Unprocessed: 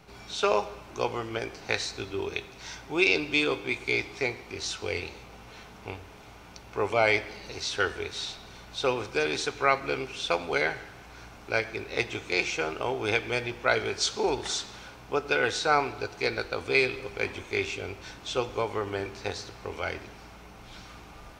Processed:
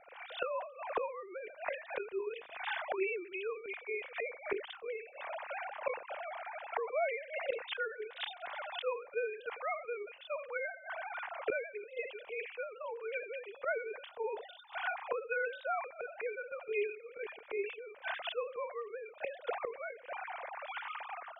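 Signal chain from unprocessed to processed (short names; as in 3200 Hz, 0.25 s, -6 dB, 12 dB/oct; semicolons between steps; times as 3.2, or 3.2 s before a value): sine-wave speech; AGC gain up to 10.5 dB; notch 1300 Hz, Q 19; flipped gate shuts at -26 dBFS, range -25 dB; air absorption 370 m; sustainer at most 120 dB/s; gain +6 dB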